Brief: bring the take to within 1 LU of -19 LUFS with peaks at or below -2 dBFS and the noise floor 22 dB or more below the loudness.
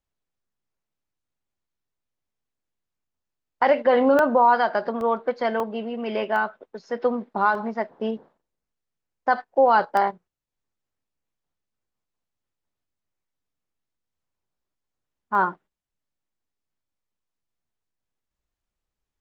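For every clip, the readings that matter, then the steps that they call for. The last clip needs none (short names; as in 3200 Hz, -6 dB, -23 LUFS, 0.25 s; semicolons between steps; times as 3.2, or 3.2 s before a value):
dropouts 7; longest dropout 1.2 ms; loudness -22.5 LUFS; peak -7.5 dBFS; loudness target -19.0 LUFS
-> interpolate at 4.19/5.01/5.6/6.36/7.55/9.97/15.35, 1.2 ms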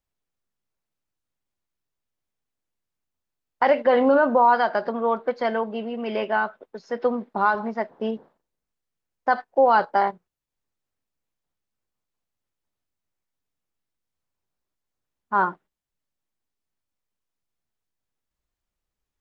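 dropouts 0; loudness -22.5 LUFS; peak -7.5 dBFS; loudness target -19.0 LUFS
-> gain +3.5 dB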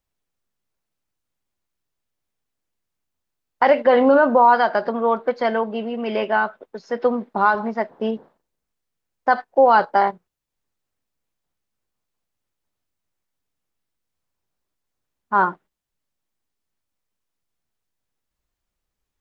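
loudness -19.0 LUFS; peak -4.0 dBFS; noise floor -81 dBFS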